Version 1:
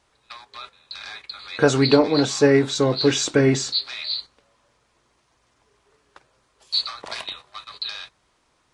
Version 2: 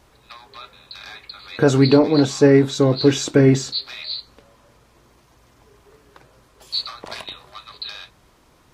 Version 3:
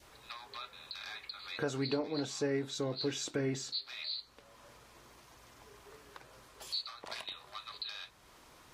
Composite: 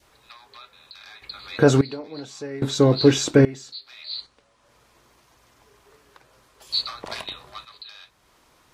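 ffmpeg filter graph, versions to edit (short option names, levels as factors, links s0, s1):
-filter_complex "[1:a]asplit=3[s0][s1][s2];[2:a]asplit=5[s3][s4][s5][s6][s7];[s3]atrim=end=1.222[s8];[s0]atrim=start=1.218:end=1.812[s9];[s4]atrim=start=1.808:end=2.622[s10];[s1]atrim=start=2.618:end=3.452[s11];[s5]atrim=start=3.448:end=4.28[s12];[0:a]atrim=start=4.04:end=4.8[s13];[s6]atrim=start=4.56:end=6.692[s14];[s2]atrim=start=6.688:end=7.652[s15];[s7]atrim=start=7.648[s16];[s8][s9]acrossfade=d=0.004:c1=hsin:c2=hsin[s17];[s17][s10]acrossfade=d=0.004:c1=hsin:c2=hsin[s18];[s18][s11]acrossfade=d=0.004:c1=hsin:c2=hsin[s19];[s19][s12]acrossfade=d=0.004:c1=hsin:c2=hsin[s20];[s20][s13]acrossfade=d=0.24:c1=tri:c2=tri[s21];[s21][s14]acrossfade=d=0.24:c1=tri:c2=tri[s22];[s22][s15]acrossfade=d=0.004:c1=hsin:c2=hsin[s23];[s23][s16]acrossfade=d=0.004:c1=hsin:c2=hsin"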